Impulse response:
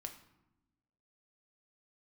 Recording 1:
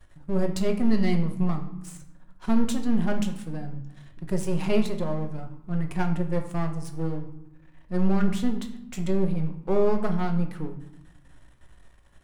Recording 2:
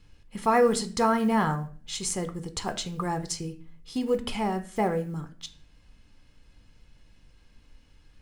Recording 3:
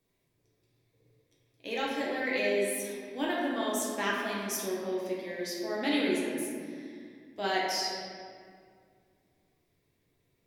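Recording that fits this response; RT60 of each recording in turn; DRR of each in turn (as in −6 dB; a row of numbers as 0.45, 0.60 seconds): 1; 0.95, 0.45, 2.1 seconds; 4.0, 8.0, −6.0 decibels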